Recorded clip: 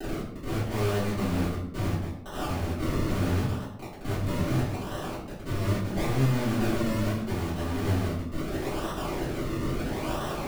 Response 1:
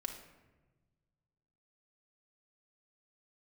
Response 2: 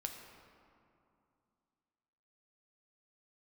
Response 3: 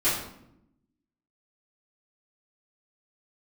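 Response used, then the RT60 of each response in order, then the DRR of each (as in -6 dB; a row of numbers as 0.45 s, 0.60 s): 3; 1.2 s, 2.6 s, 0.80 s; 1.5 dB, 2.5 dB, -14.0 dB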